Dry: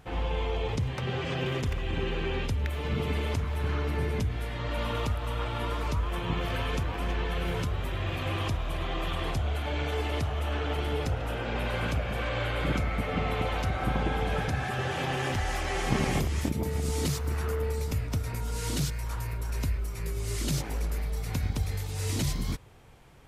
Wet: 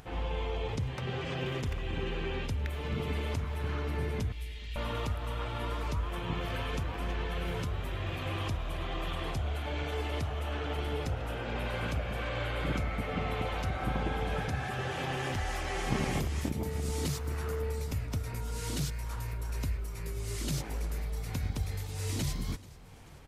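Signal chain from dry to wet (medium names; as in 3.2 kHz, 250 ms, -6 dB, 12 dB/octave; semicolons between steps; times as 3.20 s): 4.32–4.76 s: inverse Chebyshev band-stop 130–1200 Hz, stop band 40 dB; upward compressor, threshold -42 dBFS; feedback delay 435 ms, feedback 58%, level -21 dB; trim -4 dB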